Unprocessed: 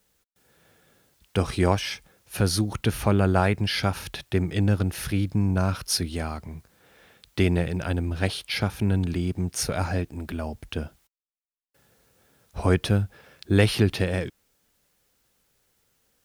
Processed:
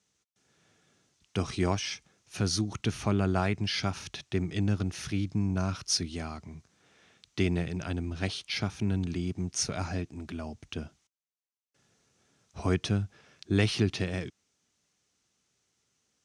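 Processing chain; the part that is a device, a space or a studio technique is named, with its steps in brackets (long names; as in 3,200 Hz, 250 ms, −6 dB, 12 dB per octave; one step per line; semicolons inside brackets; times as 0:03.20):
car door speaker (loudspeaker in its box 89–8,200 Hz, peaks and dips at 520 Hz −8 dB, 870 Hz −4 dB, 1,600 Hz −4 dB, 6,100 Hz +7 dB)
level −4.5 dB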